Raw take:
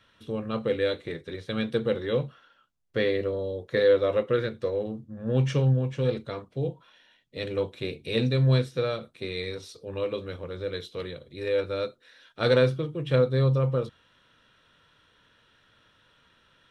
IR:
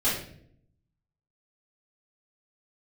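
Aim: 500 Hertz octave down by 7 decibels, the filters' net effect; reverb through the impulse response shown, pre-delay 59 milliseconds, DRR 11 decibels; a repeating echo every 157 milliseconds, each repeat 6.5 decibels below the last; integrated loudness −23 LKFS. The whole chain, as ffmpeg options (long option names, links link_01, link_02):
-filter_complex "[0:a]equalizer=frequency=500:width_type=o:gain=-7.5,aecho=1:1:157|314|471|628|785|942:0.473|0.222|0.105|0.0491|0.0231|0.0109,asplit=2[link_01][link_02];[1:a]atrim=start_sample=2205,adelay=59[link_03];[link_02][link_03]afir=irnorm=-1:irlink=0,volume=-22.5dB[link_04];[link_01][link_04]amix=inputs=2:normalize=0,volume=6.5dB"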